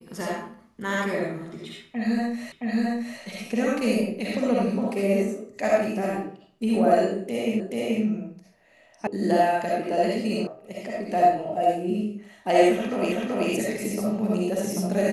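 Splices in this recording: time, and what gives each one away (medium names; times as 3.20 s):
2.52 s: repeat of the last 0.67 s
7.60 s: repeat of the last 0.43 s
9.07 s: sound stops dead
10.47 s: sound stops dead
13.12 s: repeat of the last 0.38 s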